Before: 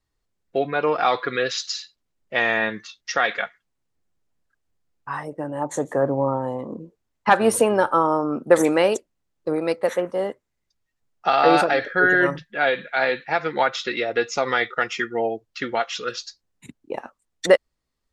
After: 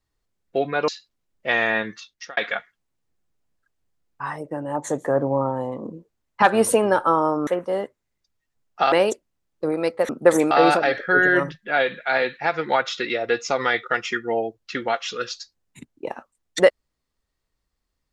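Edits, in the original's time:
0.88–1.75 s: delete
2.85–3.24 s: fade out
8.34–8.76 s: swap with 9.93–11.38 s

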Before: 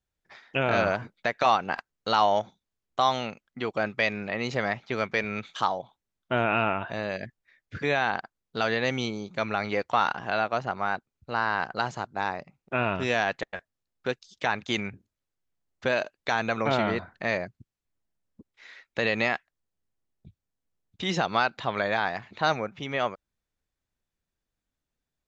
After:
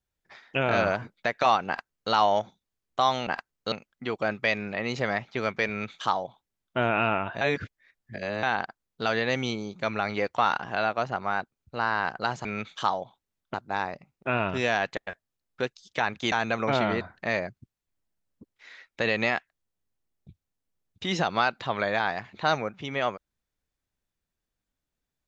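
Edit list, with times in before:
1.67–2.12 s: copy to 3.27 s
5.23–6.32 s: copy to 12.00 s
6.96–7.98 s: reverse
14.78–16.30 s: delete

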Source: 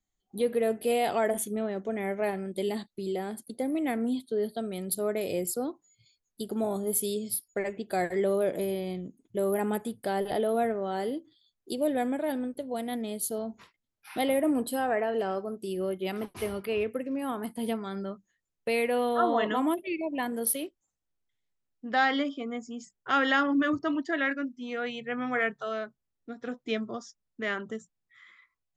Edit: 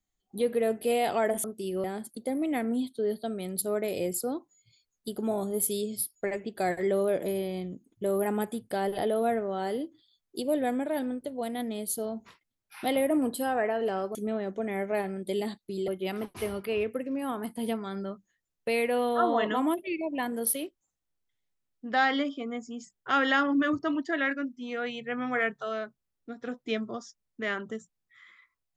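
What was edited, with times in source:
1.44–3.17 s: swap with 15.48–15.88 s

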